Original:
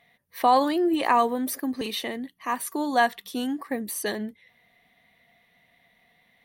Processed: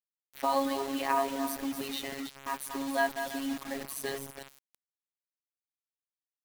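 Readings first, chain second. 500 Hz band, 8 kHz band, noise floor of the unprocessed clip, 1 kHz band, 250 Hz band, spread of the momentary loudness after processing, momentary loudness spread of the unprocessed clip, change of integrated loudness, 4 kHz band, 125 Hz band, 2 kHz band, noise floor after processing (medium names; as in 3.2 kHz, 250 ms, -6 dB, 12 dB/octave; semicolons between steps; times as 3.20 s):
-6.5 dB, -4.5 dB, -65 dBFS, -9.0 dB, -8.0 dB, 10 LU, 12 LU, -7.5 dB, -6.0 dB, no reading, -5.5 dB, under -85 dBFS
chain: backward echo that repeats 164 ms, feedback 44%, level -8 dB; robot voice 137 Hz; bit crusher 6-bit; trim -5.5 dB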